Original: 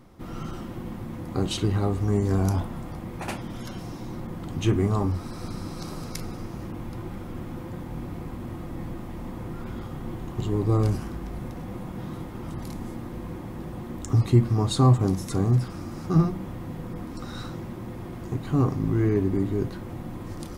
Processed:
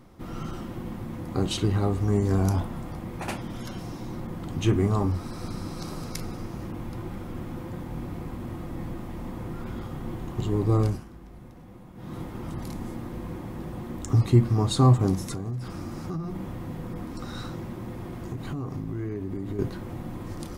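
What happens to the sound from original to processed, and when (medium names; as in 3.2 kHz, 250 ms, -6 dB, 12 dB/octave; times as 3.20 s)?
10.81–12.19 s: dip -11.5 dB, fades 0.24 s
15.22–19.59 s: compression 10:1, threshold -28 dBFS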